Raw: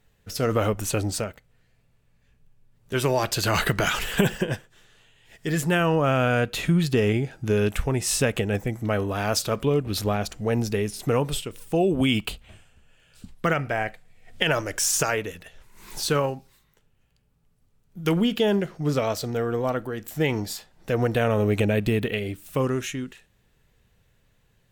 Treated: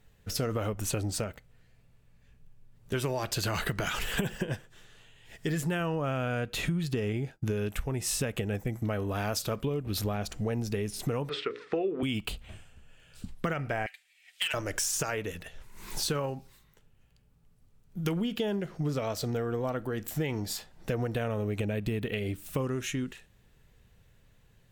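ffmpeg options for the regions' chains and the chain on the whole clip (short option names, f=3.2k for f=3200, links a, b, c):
-filter_complex "[0:a]asettb=1/sr,asplit=3[a][b][c];[a]atrim=end=7.164[d];[b]atrim=start=7.16:end=10.18,asetpts=PTS-STARTPTS,afade=t=in:d=0.004:c=qsin,afade=t=out:st=3.016:d=0.004:c=qsin,agate=range=-33dB:threshold=-36dB:ratio=3:release=100:detection=peak,equalizer=f=13k:t=o:w=0.25:g=6[e];[c]atrim=start=10.176[f];[d][e]acrossfade=d=0.004:c1=hsin:c2=qsin[g];[g][f]acrossfade=d=0.004:c1=qsin:c2=hsin,asettb=1/sr,asplit=3[h][i][j];[h]atrim=end=11.294[k];[i]atrim=start=11.29:end=12.03,asetpts=PTS-STARTPTS,afade=t=in:d=0.004:c=qsin,afade=t=out:st=0.736:d=0.004:c=qsin,highpass=390,equalizer=f=430:t=q:w=4:g=8,equalizer=f=610:t=q:w=4:g=-7,equalizer=f=860:t=q:w=4:g=-7,equalizer=f=1.3k:t=q:w=4:g=8,equalizer=f=1.9k:t=q:w=4:g=8,equalizer=f=3k:t=q:w=4:g=-8,lowpass=f=3.9k:w=0.5412,lowpass=f=3.9k:w=1.3066,bandreject=f=60:t=h:w=6,bandreject=f=120:t=h:w=6,bandreject=f=180:t=h:w=6,bandreject=f=240:t=h:w=6,bandreject=f=300:t=h:w=6,bandreject=f=360:t=h:w=6,bandreject=f=420:t=h:w=6,bandreject=f=480:t=h:w=6,bandreject=f=540:t=h:w=6,acontrast=28[l];[j]atrim=start=12.026[m];[k][l]acrossfade=d=0.004:c1=hsin:c2=qsin[n];[n][m]acrossfade=d=0.004:c1=qsin:c2=hsin,asettb=1/sr,asplit=3[o][p][q];[o]atrim=end=13.864[r];[p]atrim=start=13.86:end=14.54,asetpts=PTS-STARTPTS,afade=t=in:d=0.004:c=qsin,afade=t=out:st=0.676:d=0.004:c=qsin,highpass=f=2.6k:t=q:w=1.6,asoftclip=type=hard:threshold=-20dB,aecho=1:1:6.8:0.43,atrim=end_sample=29988[s];[q]atrim=start=14.536[t];[r][s]acrossfade=d=0.004:c1=hsin:c2=qsin[u];[u][t]acrossfade=d=0.004:c1=qsin:c2=hsin,lowshelf=f=200:g=3.5,acompressor=threshold=-28dB:ratio=6"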